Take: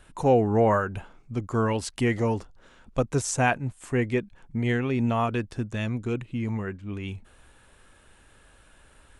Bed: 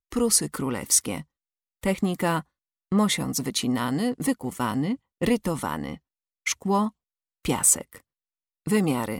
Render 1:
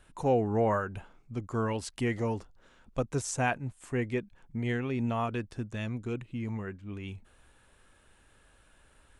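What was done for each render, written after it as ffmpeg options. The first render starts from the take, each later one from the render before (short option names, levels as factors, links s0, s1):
-af "volume=0.501"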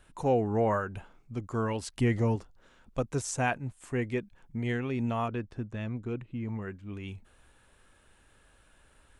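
-filter_complex "[0:a]asettb=1/sr,asplit=3[s0][s1][s2];[s0]atrim=end=1.964[s3];[s1]atrim=start=1.96:end=2.36,asetpts=PTS-STARTPTS,afade=t=in:d=0.004:c=qsin,afade=t=out:st=0.396:d=0.004:c=qsin,lowshelf=f=220:g=8.5[s4];[s2]atrim=start=2.356[s5];[s3][s4]acrossfade=d=0.004:c1=hsin:c2=qsin[s6];[s6][s5]acrossfade=d=0.004:c1=qsin:c2=hsin,asettb=1/sr,asplit=3[s7][s8][s9];[s7]atrim=end=5.284[s10];[s8]atrim=start=5.28:end=6.62,asetpts=PTS-STARTPTS,afade=t=in:d=0.004:c=qsin,afade=t=out:st=1.336:d=0.004:c=qsin,lowpass=f=1900:p=1[s11];[s9]atrim=start=6.616[s12];[s10][s11]acrossfade=d=0.004:c1=hsin:c2=qsin[s13];[s13][s12]acrossfade=d=0.004:c1=qsin:c2=hsin"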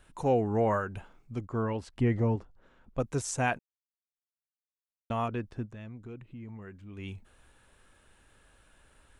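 -filter_complex "[0:a]asettb=1/sr,asplit=3[s0][s1][s2];[s0]atrim=end=1.454[s3];[s1]atrim=start=1.45:end=3,asetpts=PTS-STARTPTS,afade=t=in:d=0.004:c=qsin,afade=t=out:st=1.546:d=0.004:c=qsin,lowpass=f=1500:p=1[s4];[s2]atrim=start=2.996[s5];[s3][s4]acrossfade=d=0.004:c1=hsin:c2=qsin[s6];[s6][s5]acrossfade=d=0.004:c1=qsin:c2=hsin,asplit=3[s7][s8][s9];[s7]afade=t=out:st=5.65:d=0.02[s10];[s8]acompressor=threshold=0.00447:ratio=2:attack=3.2:release=140:knee=1:detection=peak,afade=t=in:st=5.65:d=0.02,afade=t=out:st=6.97:d=0.02[s11];[s9]afade=t=in:st=6.97:d=0.02[s12];[s10][s11][s12]amix=inputs=3:normalize=0,asplit=3[s13][s14][s15];[s13]atrim=end=3.59,asetpts=PTS-STARTPTS,afade=t=out:st=3.586:d=0.004:c=hsin[s16];[s14]atrim=start=3.59:end=5.1,asetpts=PTS-STARTPTS,volume=0[s17];[s15]atrim=start=5.1,asetpts=PTS-STARTPTS,afade=t=in:d=0.004:c=hsin[s18];[s16][s17][s18]concat=n=3:v=0:a=1"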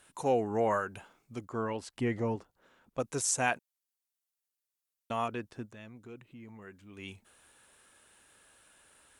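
-af "highpass=f=300:p=1,aemphasis=mode=production:type=cd"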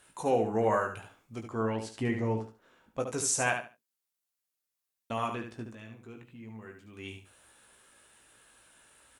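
-filter_complex "[0:a]asplit=2[s0][s1];[s1]adelay=18,volume=0.473[s2];[s0][s2]amix=inputs=2:normalize=0,aecho=1:1:72|144|216:0.447|0.0983|0.0216"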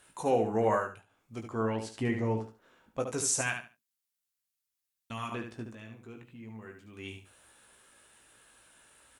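-filter_complex "[0:a]asettb=1/sr,asplit=3[s0][s1][s2];[s0]atrim=end=3.414[s3];[s1]atrim=start=3.41:end=5.32,asetpts=PTS-STARTPTS,afade=t=in:d=0.004:c=qsin,afade=t=out:st=1.906:d=0.004:c=qsin,equalizer=f=550:t=o:w=1.6:g=-13.5[s4];[s2]atrim=start=5.316[s5];[s3][s4]acrossfade=d=0.004:c1=hsin:c2=qsin[s6];[s6][s5]acrossfade=d=0.004:c1=qsin:c2=hsin,asplit=2[s7][s8];[s7]atrim=end=1.06,asetpts=PTS-STARTPTS,afade=t=out:st=0.73:d=0.33:silence=0.0944061[s9];[s8]atrim=start=1.06,asetpts=PTS-STARTPTS,afade=t=in:d=0.33:silence=0.0944061[s10];[s9][s10]concat=n=2:v=0:a=1"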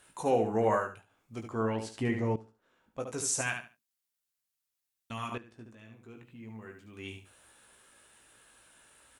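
-filter_complex "[0:a]asplit=3[s0][s1][s2];[s0]atrim=end=2.36,asetpts=PTS-STARTPTS,afade=t=out:st=2.356:d=0.004:c=hsin:silence=0.188365[s3];[s1]atrim=start=2.36:end=5.38,asetpts=PTS-STARTPTS,afade=t=in:d=1.26:silence=0.188365,afade=t=out:st=3.016:d=0.004:c=hsin:silence=0.188365[s4];[s2]atrim=start=5.38,asetpts=PTS-STARTPTS,afade=t=in:d=1.09:silence=0.188365[s5];[s3][s4][s5]concat=n=3:v=0:a=1"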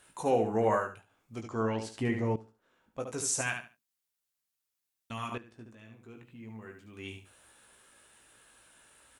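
-filter_complex "[0:a]asettb=1/sr,asplit=3[s0][s1][s2];[s0]atrim=end=1.414[s3];[s1]atrim=start=1.41:end=1.83,asetpts=PTS-STARTPTS,afade=t=in:d=0.004:c=qsin,afade=t=out:st=0.416:d=0.004:c=qsin,lowpass=f=6100:t=q:w=2.4[s4];[s2]atrim=start=1.826[s5];[s3][s4]acrossfade=d=0.004:c1=hsin:c2=qsin[s6];[s6][s5]acrossfade=d=0.004:c1=qsin:c2=hsin"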